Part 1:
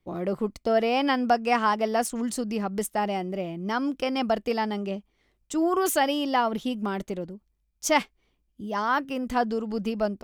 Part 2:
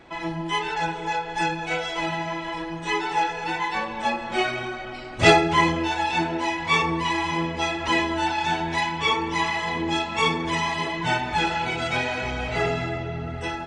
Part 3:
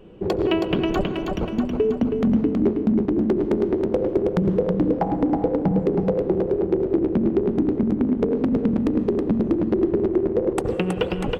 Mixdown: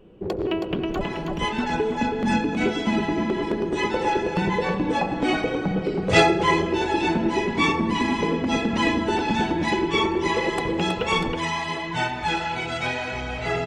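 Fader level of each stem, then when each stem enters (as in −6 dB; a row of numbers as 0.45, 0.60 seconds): muted, −1.5 dB, −4.5 dB; muted, 0.90 s, 0.00 s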